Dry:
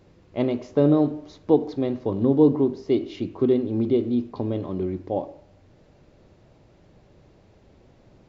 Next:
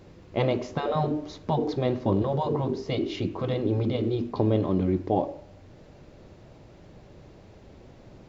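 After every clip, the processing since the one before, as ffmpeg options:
ffmpeg -i in.wav -af "afftfilt=real='re*lt(hypot(re,im),0.398)':imag='im*lt(hypot(re,im),0.398)':win_size=1024:overlap=0.75,volume=5dB" out.wav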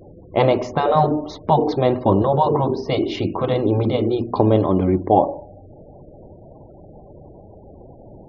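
ffmpeg -i in.wav -af "afftfilt=real='re*gte(hypot(re,im),0.00398)':imag='im*gte(hypot(re,im),0.00398)':win_size=1024:overlap=0.75,equalizer=frequency=840:width_type=o:width=1.2:gain=6.5,bandreject=frequency=60:width_type=h:width=6,bandreject=frequency=120:width_type=h:width=6,bandreject=frequency=180:width_type=h:width=6,bandreject=frequency=240:width_type=h:width=6,volume=6.5dB" out.wav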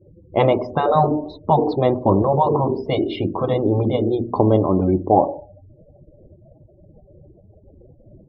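ffmpeg -i in.wav -af "afftdn=noise_reduction=28:noise_floor=-32" out.wav

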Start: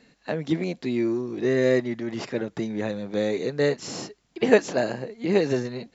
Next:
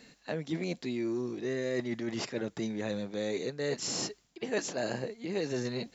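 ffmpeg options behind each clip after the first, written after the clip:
ffmpeg -i in.wav -af "highshelf=frequency=4100:gain=9.5,areverse,acompressor=threshold=-31dB:ratio=5,areverse" out.wav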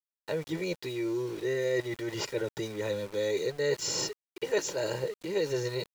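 ffmpeg -i in.wav -af "aecho=1:1:2.1:0.91,aeval=exprs='val(0)*gte(abs(val(0)),0.00668)':channel_layout=same" out.wav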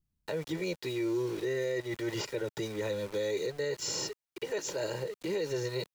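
ffmpeg -i in.wav -filter_complex "[0:a]acrossover=split=170|1300[link_01][link_02][link_03];[link_01]acompressor=mode=upward:threshold=-55dB:ratio=2.5[link_04];[link_04][link_02][link_03]amix=inputs=3:normalize=0,alimiter=level_in=2dB:limit=-24dB:level=0:latency=1:release=201,volume=-2dB,volume=1.5dB" out.wav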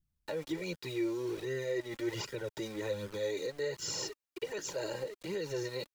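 ffmpeg -i in.wav -af "flanger=delay=0.6:depth=3.2:regen=28:speed=1.3:shape=sinusoidal,volume=1dB" out.wav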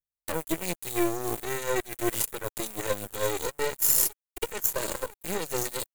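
ffmpeg -i in.wav -af "aeval=exprs='0.0631*(cos(1*acos(clip(val(0)/0.0631,-1,1)))-cos(1*PI/2))+0.00891*(cos(3*acos(clip(val(0)/0.0631,-1,1)))-cos(3*PI/2))+0.0112*(cos(4*acos(clip(val(0)/0.0631,-1,1)))-cos(4*PI/2))+0.00501*(cos(7*acos(clip(val(0)/0.0631,-1,1)))-cos(7*PI/2))':channel_layout=same,aexciter=amount=3.5:drive=9.6:freq=7300,volume=8dB" out.wav

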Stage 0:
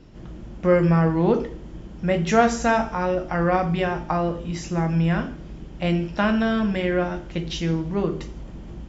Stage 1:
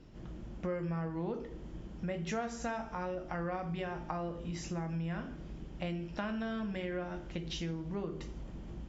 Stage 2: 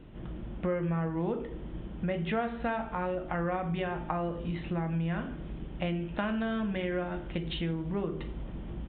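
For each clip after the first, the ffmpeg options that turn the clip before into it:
ffmpeg -i in.wav -af "acompressor=threshold=-28dB:ratio=4,volume=-7.5dB" out.wav
ffmpeg -i in.wav -af "aresample=8000,aresample=44100,volume=5.5dB" out.wav

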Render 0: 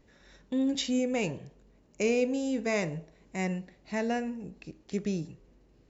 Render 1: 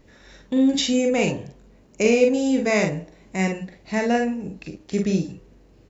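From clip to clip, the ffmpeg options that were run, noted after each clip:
ffmpeg -i in.wav -af "aecho=1:1:42|52:0.501|0.376,volume=8dB" out.wav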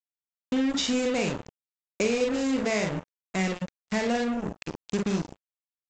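ffmpeg -i in.wav -af "acompressor=threshold=-25dB:ratio=3,aresample=16000,acrusher=bits=4:mix=0:aa=0.5,aresample=44100" out.wav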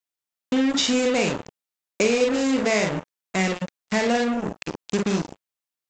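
ffmpeg -i in.wav -af "lowshelf=frequency=140:gain=-8,volume=6dB" out.wav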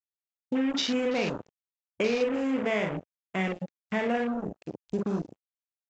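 ffmpeg -i in.wav -af "afwtdn=0.0282,volume=-6dB" out.wav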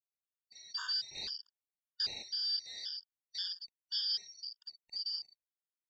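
ffmpeg -i in.wav -af "afftfilt=real='real(if(lt(b,272),68*(eq(floor(b/68),0)*3+eq(floor(b/68),1)*2+eq(floor(b/68),2)*1+eq(floor(b/68),3)*0)+mod(b,68),b),0)':imag='imag(if(lt(b,272),68*(eq(floor(b/68),0)*3+eq(floor(b/68),1)*2+eq(floor(b/68),2)*1+eq(floor(b/68),3)*0)+mod(b,68),b),0)':win_size=2048:overlap=0.75,afftfilt=real='re*gt(sin(2*PI*1.9*pts/sr)*(1-2*mod(floor(b*sr/1024/920),2)),0)':imag='im*gt(sin(2*PI*1.9*pts/sr)*(1-2*mod(floor(b*sr/1024/920),2)),0)':win_size=1024:overlap=0.75,volume=-7dB" out.wav

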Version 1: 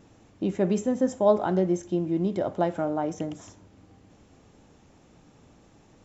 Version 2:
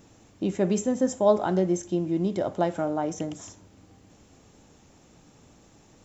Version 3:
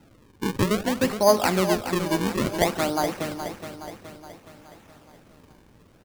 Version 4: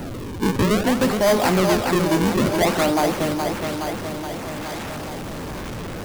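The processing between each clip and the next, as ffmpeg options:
ffmpeg -i in.wav -af "highshelf=frequency=5700:gain=11.5" out.wav
ffmpeg -i in.wav -filter_complex "[0:a]acrossover=split=100|1100|2300[link_01][link_02][link_03][link_04];[link_03]dynaudnorm=framelen=100:gausssize=9:maxgain=12dB[link_05];[link_01][link_02][link_05][link_04]amix=inputs=4:normalize=0,acrusher=samples=38:mix=1:aa=0.000001:lfo=1:lforange=60.8:lforate=0.58,aecho=1:1:420|840|1260|1680|2100|2520:0.335|0.178|0.0941|0.0499|0.0264|0.014" out.wav
ffmpeg -i in.wav -filter_complex "[0:a]aeval=exprs='val(0)+0.5*0.0224*sgn(val(0))':channel_layout=same,asplit=2[link_01][link_02];[link_02]acrusher=samples=10:mix=1:aa=0.000001:lfo=1:lforange=16:lforate=1,volume=-6dB[link_03];[link_01][link_03]amix=inputs=2:normalize=0,asoftclip=type=tanh:threshold=-17dB,volume=4dB" out.wav

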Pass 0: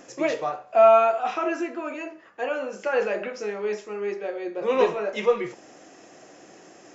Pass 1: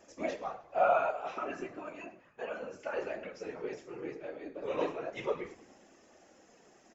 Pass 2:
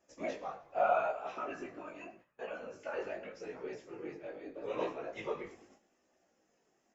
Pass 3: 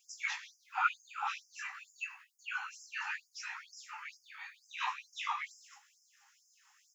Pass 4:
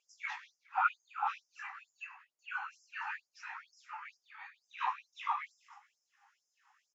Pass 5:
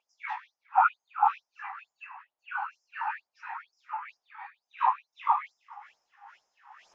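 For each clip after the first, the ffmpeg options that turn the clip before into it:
ffmpeg -i in.wav -filter_complex "[0:a]afftfilt=real='hypot(re,im)*cos(2*PI*random(0))':imag='hypot(re,im)*sin(2*PI*random(1))':win_size=512:overlap=0.75,flanger=delay=3.3:depth=3.7:regen=-50:speed=0.33:shape=sinusoidal,asplit=6[link_01][link_02][link_03][link_04][link_05][link_06];[link_02]adelay=103,afreqshift=-41,volume=-19.5dB[link_07];[link_03]adelay=206,afreqshift=-82,volume=-23.9dB[link_08];[link_04]adelay=309,afreqshift=-123,volume=-28.4dB[link_09];[link_05]adelay=412,afreqshift=-164,volume=-32.8dB[link_10];[link_06]adelay=515,afreqshift=-205,volume=-37.2dB[link_11];[link_01][link_07][link_08][link_09][link_10][link_11]amix=inputs=6:normalize=0,volume=-2dB" out.wav
ffmpeg -i in.wav -af "agate=range=-11dB:threshold=-57dB:ratio=16:detection=peak,flanger=delay=15.5:depth=5.4:speed=0.82" out.wav
ffmpeg -i in.wav -filter_complex "[0:a]asplit=2[link_01][link_02];[link_02]acompressor=threshold=-44dB:ratio=6,volume=-3dB[link_03];[link_01][link_03]amix=inputs=2:normalize=0,afftfilt=real='re*gte(b*sr/1024,760*pow(4900/760,0.5+0.5*sin(2*PI*2.2*pts/sr)))':imag='im*gte(b*sr/1024,760*pow(4900/760,0.5+0.5*sin(2*PI*2.2*pts/sr)))':win_size=1024:overlap=0.75,volume=9.5dB" out.wav
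ffmpeg -i in.wav -filter_complex "[0:a]bandpass=frequency=630:width_type=q:width=0.91:csg=0,asplit=2[link_01][link_02];[link_02]adelay=414,volume=-25dB,highshelf=frequency=4000:gain=-9.32[link_03];[link_01][link_03]amix=inputs=2:normalize=0,volume=5.5dB" out.wav
ffmpeg -i in.wav -af "lowpass=3600,equalizer=frequency=830:width_type=o:width=1.3:gain=14,areverse,acompressor=mode=upward:threshold=-41dB:ratio=2.5,areverse,volume=-1.5dB" out.wav

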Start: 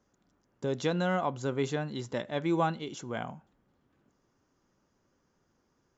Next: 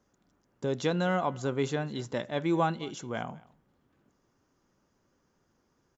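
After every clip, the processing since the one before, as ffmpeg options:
ffmpeg -i in.wav -af "aecho=1:1:209:0.075,volume=1dB" out.wav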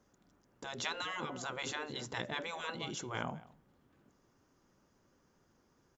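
ffmpeg -i in.wav -af "afftfilt=real='re*lt(hypot(re,im),0.0794)':imag='im*lt(hypot(re,im),0.0794)':win_size=1024:overlap=0.75,volume=1dB" out.wav

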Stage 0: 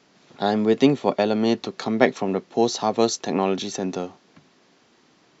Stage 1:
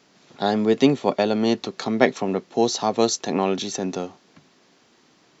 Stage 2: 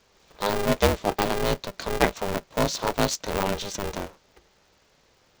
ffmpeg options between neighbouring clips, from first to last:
ffmpeg -i in.wav -af "highshelf=frequency=5800:gain=5" out.wav
ffmpeg -i in.wav -af "aeval=exprs='val(0)*sgn(sin(2*PI*200*n/s))':channel_layout=same,volume=-4dB" out.wav

